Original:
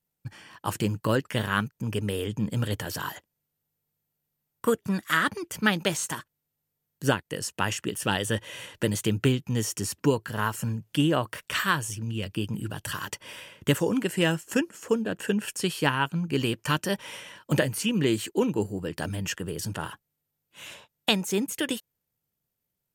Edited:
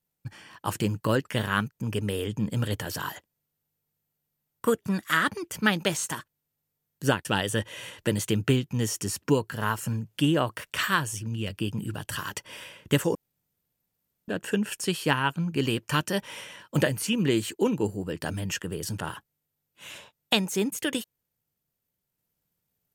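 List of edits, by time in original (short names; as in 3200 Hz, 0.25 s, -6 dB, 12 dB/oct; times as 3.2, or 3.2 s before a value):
7.25–8.01 cut
13.91–15.04 room tone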